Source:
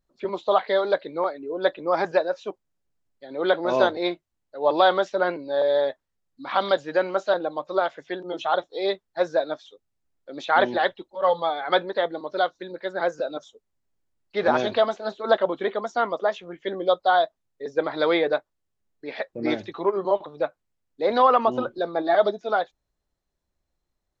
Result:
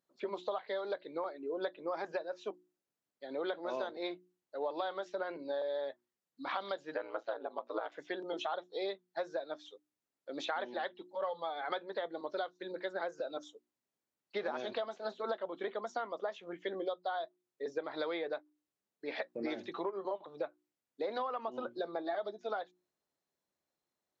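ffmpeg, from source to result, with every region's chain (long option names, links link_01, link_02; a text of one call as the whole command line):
ffmpeg -i in.wav -filter_complex "[0:a]asettb=1/sr,asplit=3[link_01][link_02][link_03];[link_01]atrim=end=6.944[link_04];[link_02]atrim=start=6.94:end=7.92,asetpts=PTS-STARTPTS,afade=type=in:duration=0.004:curve=qsin,afade=type=out:start_time=0.976:duration=0.004:curve=qsin,highpass=340,lowpass=3100,aeval=exprs='val(0)*sin(2*PI*57*n/s)':channel_layout=same[link_05];[link_03]atrim=start=7.916[link_06];[link_04][link_05]acrossfade=duration=0.004:curve1=hsin:curve2=qsin[link_07];[link_07][link_06]acrossfade=duration=0.004:curve1=qsin:curve2=hsin,highpass=210,bandreject=frequency=60:width_type=h:width=6,bandreject=frequency=120:width_type=h:width=6,bandreject=frequency=180:width_type=h:width=6,bandreject=frequency=240:width_type=h:width=6,bandreject=frequency=300:width_type=h:width=6,bandreject=frequency=360:width_type=h:width=6,acompressor=threshold=-30dB:ratio=10,volume=-4dB" out.wav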